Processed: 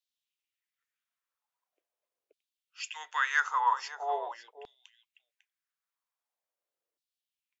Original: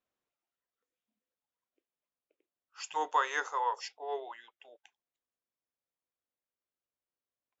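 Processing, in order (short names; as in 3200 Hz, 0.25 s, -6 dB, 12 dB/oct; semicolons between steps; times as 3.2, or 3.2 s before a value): on a send: echo 0.55 s -14 dB; on the sum: LFO high-pass saw down 0.43 Hz 400–4100 Hz; low shelf 170 Hz +11.5 dB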